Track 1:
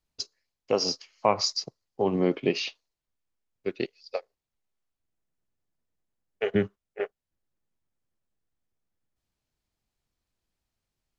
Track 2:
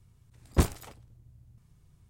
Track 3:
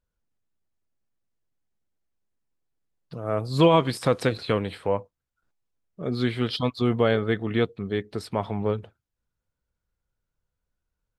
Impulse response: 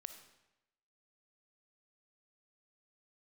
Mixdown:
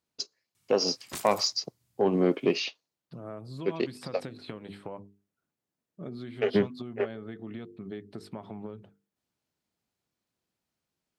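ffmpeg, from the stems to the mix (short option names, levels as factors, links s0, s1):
-filter_complex "[0:a]lowshelf=f=460:g=4.5,asoftclip=type=tanh:threshold=0.282,volume=0.944[s0];[1:a]tiltshelf=f=1300:g=-8.5,asoftclip=type=tanh:threshold=0.15,adelay=550,volume=0.708[s1];[2:a]lowshelf=f=410:g=11.5,bandreject=f=50:t=h:w=6,bandreject=f=100:t=h:w=6,bandreject=f=150:t=h:w=6,bandreject=f=200:t=h:w=6,bandreject=f=250:t=h:w=6,bandreject=f=300:t=h:w=6,bandreject=f=350:t=h:w=6,bandreject=f=400:t=h:w=6,bandreject=f=450:t=h:w=6,acompressor=threshold=0.1:ratio=6,volume=0.335[s2];[s1][s2]amix=inputs=2:normalize=0,equalizer=f=480:w=7.9:g=-8.5,acompressor=threshold=0.0224:ratio=4,volume=1[s3];[s0][s3]amix=inputs=2:normalize=0,highpass=180"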